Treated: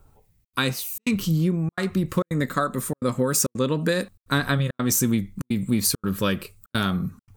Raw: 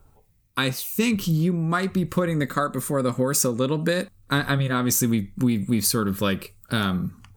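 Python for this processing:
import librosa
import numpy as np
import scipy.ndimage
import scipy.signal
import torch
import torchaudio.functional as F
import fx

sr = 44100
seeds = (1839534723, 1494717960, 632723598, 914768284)

y = fx.step_gate(x, sr, bpm=169, pattern='xxxxx.xxxxx.xx', floor_db=-60.0, edge_ms=4.5)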